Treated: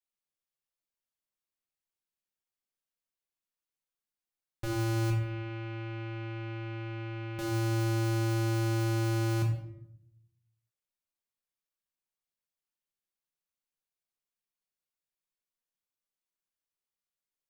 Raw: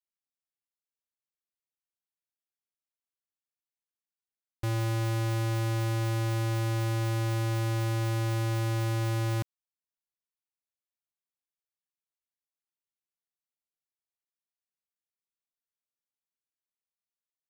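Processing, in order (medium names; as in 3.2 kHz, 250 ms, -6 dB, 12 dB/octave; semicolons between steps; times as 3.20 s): 5.10–7.39 s: four-pole ladder low-pass 3 kHz, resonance 50%; reverberation RT60 0.70 s, pre-delay 5 ms, DRR -0.5 dB; trim -3 dB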